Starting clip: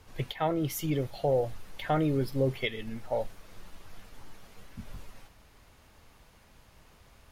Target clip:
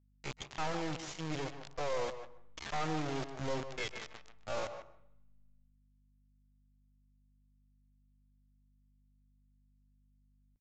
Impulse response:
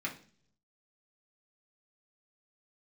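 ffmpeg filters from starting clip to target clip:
-filter_complex "[0:a]highpass=f=220:p=1,equalizer=f=1.1k:t=o:w=0.57:g=9.5,acrusher=bits=3:dc=4:mix=0:aa=0.000001,asoftclip=type=hard:threshold=-24.5dB,atempo=0.69,aeval=exprs='val(0)+0.000501*(sin(2*PI*50*n/s)+sin(2*PI*2*50*n/s)/2+sin(2*PI*3*50*n/s)/3+sin(2*PI*4*50*n/s)/4+sin(2*PI*5*50*n/s)/5)':c=same,asplit=2[a][b];[b]adelay=150,highpass=300,lowpass=3.4k,asoftclip=type=hard:threshold=-32.5dB,volume=-9dB[c];[a][c]amix=inputs=2:normalize=0,asplit=2[d][e];[1:a]atrim=start_sample=2205,asetrate=23814,aresample=44100,adelay=128[f];[e][f]afir=irnorm=-1:irlink=0,volume=-22dB[g];[d][g]amix=inputs=2:normalize=0,aresample=16000,aresample=44100,volume=-2.5dB"

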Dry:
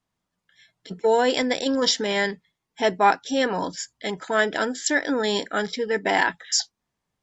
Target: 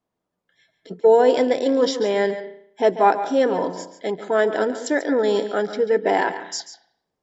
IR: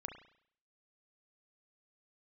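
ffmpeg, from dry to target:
-filter_complex "[0:a]equalizer=f=460:t=o:w=2.4:g=14.5,asplit=2[a][b];[1:a]atrim=start_sample=2205,adelay=140[c];[b][c]afir=irnorm=-1:irlink=0,volume=-7.5dB[d];[a][d]amix=inputs=2:normalize=0,volume=-8dB"

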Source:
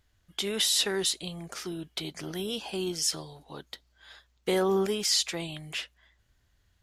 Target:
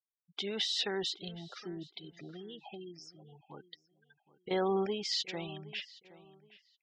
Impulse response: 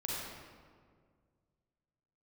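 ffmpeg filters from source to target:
-filter_complex "[0:a]adynamicequalizer=threshold=0.00251:dfrequency=800:dqfactor=5:tfrequency=800:tqfactor=5:attack=5:release=100:ratio=0.375:range=3:mode=boostabove:tftype=bell,asettb=1/sr,asplit=3[a][b][c];[a]atrim=end=1.974[d];[b]atrim=start=1.97:end=4.51,asetpts=PTS-STARTPTS,afade=t=in:d=0.004:c=qsin,afade=t=out:st=2.536:d=0.004:c=qsin,acompressor=threshold=-37dB:ratio=16[e];[c]atrim=start=4.506[f];[d][e]acrossfade=d=0.004:c1=hsin:c2=qsin[g];[g][f]acrossfade=d=0.004:c1=qsin:c2=hsin,afftfilt=real='re*gte(hypot(re,im),0.0158)':imag='im*gte(hypot(re,im),0.0158)':win_size=1024:overlap=0.75,lowpass=f=5.1k:w=0.5412,lowpass=f=5.1k:w=1.3066,asplit=2[h][i];[i]adelay=769,lowpass=f=3.8k:p=1,volume=-18.5dB,asplit=2[j][k];[k]adelay=769,lowpass=f=3.8k:p=1,volume=0.26[l];[h][j][l]amix=inputs=3:normalize=0,volume=-5.5dB"

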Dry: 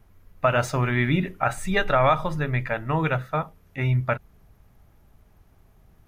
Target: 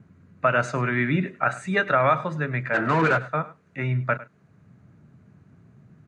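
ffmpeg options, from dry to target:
-filter_complex "[0:a]asplit=3[a][b][c];[a]afade=t=out:st=2.73:d=0.02[d];[b]asplit=2[e][f];[f]highpass=f=720:p=1,volume=30dB,asoftclip=type=tanh:threshold=-12dB[g];[e][g]amix=inputs=2:normalize=0,lowpass=f=1.2k:p=1,volume=-6dB,afade=t=in:st=2.73:d=0.02,afade=t=out:st=3.17:d=0.02[h];[c]afade=t=in:st=3.17:d=0.02[i];[d][h][i]amix=inputs=3:normalize=0,highpass=f=130:w=0.5412,highpass=f=130:w=1.3066,equalizer=f=820:t=q:w=4:g=-6,equalizer=f=1.5k:t=q:w=4:g=5,equalizer=f=3.3k:t=q:w=4:g=-8,equalizer=f=5.3k:t=q:w=4:g=-9,lowpass=f=7.2k:w=0.5412,lowpass=f=7.2k:w=1.3066,aecho=1:1:102:0.126,acrossover=split=240|1000|3000[j][k][l][m];[j]acompressor=mode=upward:threshold=-39dB:ratio=2.5[n];[n][k][l][m]amix=inputs=4:normalize=0"

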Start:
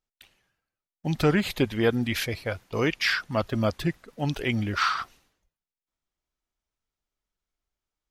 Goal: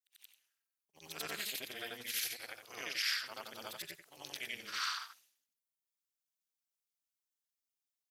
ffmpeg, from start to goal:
-af "afftfilt=real='re':imag='-im':win_size=8192:overlap=0.75,tremolo=f=240:d=0.919,aderivative,volume=7.5dB"

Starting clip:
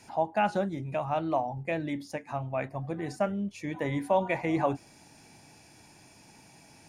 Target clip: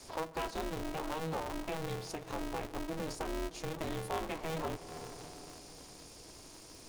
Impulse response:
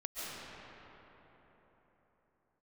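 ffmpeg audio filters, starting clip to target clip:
-filter_complex "[0:a]acrossover=split=700|1400[a][b][c];[a]alimiter=level_in=5dB:limit=-24dB:level=0:latency=1:release=39,volume=-5dB[d];[d][b][c]amix=inputs=3:normalize=0,equalizer=f=740:w=0.47:g=-7.5,bandreject=f=600:w=12,asplit=2[e][f];[1:a]atrim=start_sample=2205,asetrate=57330,aresample=44100,adelay=141[g];[f][g]afir=irnorm=-1:irlink=0,volume=-16.5dB[h];[e][h]amix=inputs=2:normalize=0,acompressor=threshold=-44dB:ratio=2,equalizer=f=500:t=o:w=1:g=6,equalizer=f=2k:t=o:w=1:g=-11,equalizer=f=4k:t=o:w=1:g=5,aeval=exprs='val(0)*sgn(sin(2*PI*160*n/s))':c=same,volume=4dB"

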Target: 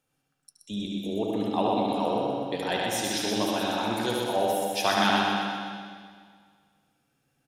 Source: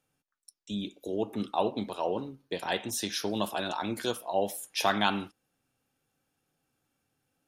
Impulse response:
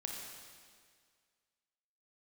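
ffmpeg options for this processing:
-filter_complex "[0:a]aecho=1:1:125|250|375|500|625|750|875:0.631|0.341|0.184|0.0994|0.0537|0.029|0.0156,asplit=2[a][b];[1:a]atrim=start_sample=2205,lowpass=6.9k,adelay=73[c];[b][c]afir=irnorm=-1:irlink=0,volume=0.5dB[d];[a][d]amix=inputs=2:normalize=0"

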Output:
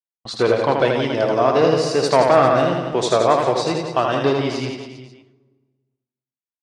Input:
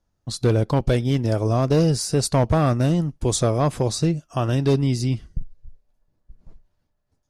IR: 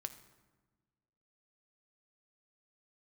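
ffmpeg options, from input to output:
-filter_complex "[0:a]highpass=560,lowpass=3.2k,agate=range=-40dB:threshold=-49dB:ratio=16:detection=peak,atempo=1.1,aecho=1:1:80|172|277.8|399.5|539.4:0.631|0.398|0.251|0.158|0.1,asplit=2[a][b];[1:a]atrim=start_sample=2205,lowshelf=f=230:g=8.5[c];[b][c]afir=irnorm=-1:irlink=0,volume=10dB[d];[a][d]amix=inputs=2:normalize=0,volume=-2dB"

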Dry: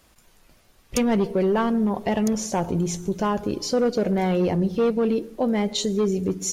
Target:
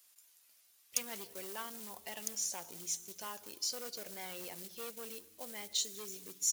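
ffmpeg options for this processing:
-filter_complex "[0:a]acrusher=bits=6:mode=log:mix=0:aa=0.000001,aderivative,asplit=4[a][b][c][d];[b]adelay=194,afreqshift=-130,volume=-24dB[e];[c]adelay=388,afreqshift=-260,volume=-30.9dB[f];[d]adelay=582,afreqshift=-390,volume=-37.9dB[g];[a][e][f][g]amix=inputs=4:normalize=0,volume=-3dB"

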